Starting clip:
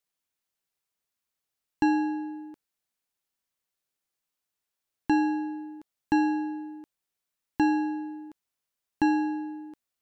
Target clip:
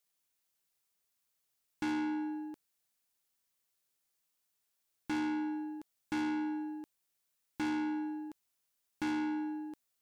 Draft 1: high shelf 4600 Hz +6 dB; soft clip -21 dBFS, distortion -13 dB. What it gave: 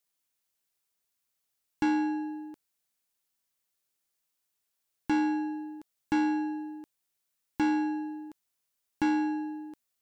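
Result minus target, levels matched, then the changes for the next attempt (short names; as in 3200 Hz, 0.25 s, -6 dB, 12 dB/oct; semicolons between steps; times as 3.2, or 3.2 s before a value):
soft clip: distortion -9 dB
change: soft clip -32 dBFS, distortion -5 dB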